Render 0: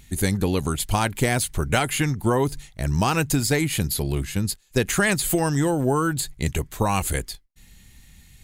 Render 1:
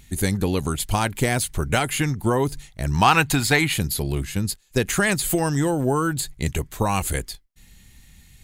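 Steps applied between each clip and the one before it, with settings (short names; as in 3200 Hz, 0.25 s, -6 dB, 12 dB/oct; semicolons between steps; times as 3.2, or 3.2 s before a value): spectral gain 2.94–3.73, 680–4500 Hz +8 dB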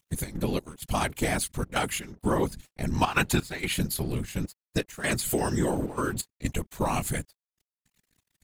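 step gate "xx.xx..xxxxx" 128 bpm -12 dB; crossover distortion -43.5 dBFS; whisperiser; gain -4.5 dB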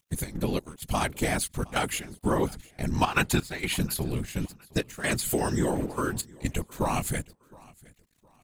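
feedback echo 0.714 s, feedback 31%, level -24 dB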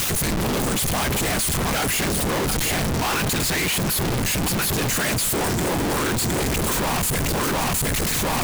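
infinite clipping; gain +7.5 dB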